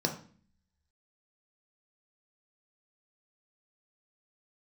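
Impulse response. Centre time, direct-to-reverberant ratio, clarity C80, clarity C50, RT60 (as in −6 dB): 16 ms, 2.5 dB, 14.0 dB, 9.5 dB, 0.45 s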